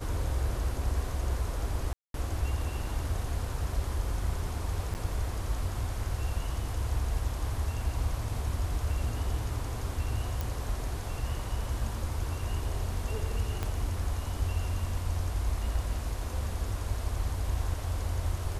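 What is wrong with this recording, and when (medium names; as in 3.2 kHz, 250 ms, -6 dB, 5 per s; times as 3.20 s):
1.93–2.14 s: dropout 212 ms
4.94–4.95 s: dropout 9.3 ms
10.41 s: pop
13.63 s: pop -18 dBFS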